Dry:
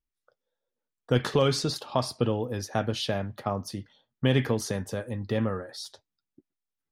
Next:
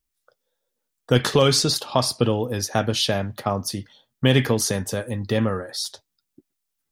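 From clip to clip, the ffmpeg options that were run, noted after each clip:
-af "highshelf=f=3.9k:g=9,volume=5.5dB"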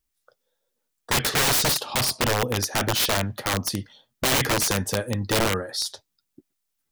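-af "aeval=exprs='(mod(6.68*val(0)+1,2)-1)/6.68':c=same,volume=1dB"

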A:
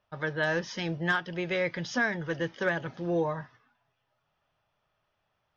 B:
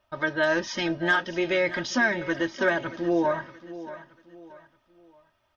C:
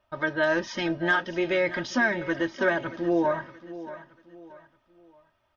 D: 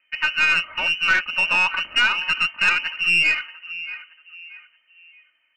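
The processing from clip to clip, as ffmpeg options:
-filter_complex "[0:a]aecho=1:1:3.2:0.66,asplit=2[a][b];[b]alimiter=limit=-22dB:level=0:latency=1:release=30,volume=-3dB[c];[a][c]amix=inputs=2:normalize=0,aecho=1:1:629|1258|1887:0.178|0.064|0.023"
-af "highshelf=f=4.1k:g=-7"
-af "adynamicsmooth=sensitivity=7.5:basefreq=2.3k,lowpass=f=2.6k:t=q:w=0.5098,lowpass=f=2.6k:t=q:w=0.6013,lowpass=f=2.6k:t=q:w=0.9,lowpass=f=2.6k:t=q:w=2.563,afreqshift=-3100,aeval=exprs='(tanh(6.31*val(0)+0.3)-tanh(0.3))/6.31':c=same,volume=7dB"

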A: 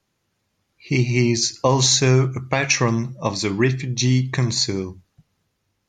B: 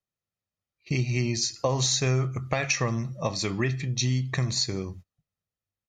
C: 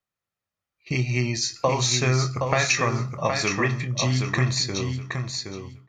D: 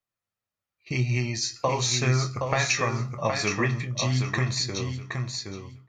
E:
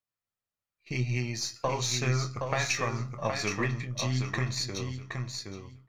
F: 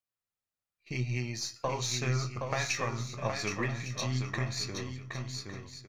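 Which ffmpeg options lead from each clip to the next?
-af "agate=range=-22dB:threshold=-41dB:ratio=16:detection=peak,aecho=1:1:1.6:0.36,acompressor=threshold=-29dB:ratio=2"
-filter_complex "[0:a]equalizer=f=1.3k:t=o:w=2.1:g=7.5,asplit=2[a][b];[b]adelay=24,volume=-11dB[c];[a][c]amix=inputs=2:normalize=0,asplit=2[d][e];[e]aecho=0:1:770|1540|2310:0.531|0.101|0.0192[f];[d][f]amix=inputs=2:normalize=0"
-af "flanger=delay=8.3:depth=1.6:regen=60:speed=1.9:shape=sinusoidal,volume=1.5dB"
-af "aeval=exprs='if(lt(val(0),0),0.708*val(0),val(0))':c=same,volume=-3.5dB"
-af "aecho=1:1:1156:0.237,volume=-3dB"

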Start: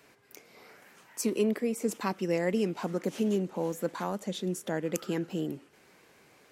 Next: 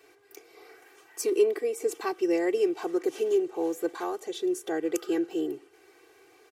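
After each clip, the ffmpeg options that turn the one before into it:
-af "lowshelf=f=280:t=q:w=3:g=-6.5,aecho=1:1:2.6:0.9,volume=-2.5dB"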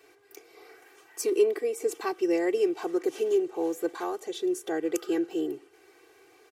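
-af anull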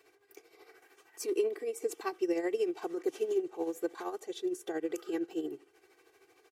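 -af "tremolo=f=13:d=0.63,volume=-3.5dB"

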